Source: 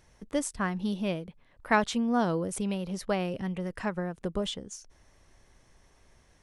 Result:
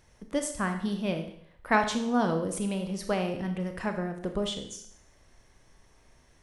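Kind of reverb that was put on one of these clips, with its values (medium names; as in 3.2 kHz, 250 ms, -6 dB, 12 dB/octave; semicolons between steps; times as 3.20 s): Schroeder reverb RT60 0.66 s, combs from 25 ms, DRR 5.5 dB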